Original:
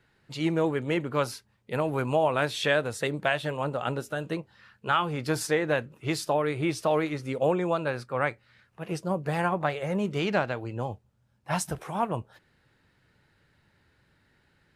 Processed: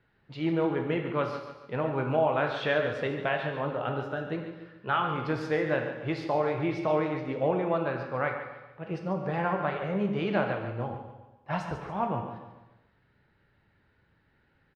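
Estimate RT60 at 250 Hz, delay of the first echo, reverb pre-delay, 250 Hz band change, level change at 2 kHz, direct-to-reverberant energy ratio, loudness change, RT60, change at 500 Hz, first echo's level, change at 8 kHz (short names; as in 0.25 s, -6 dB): 1.0 s, 0.142 s, 6 ms, -1.0 dB, -2.5 dB, 2.5 dB, -1.5 dB, 1.1 s, -1.0 dB, -10.5 dB, under -20 dB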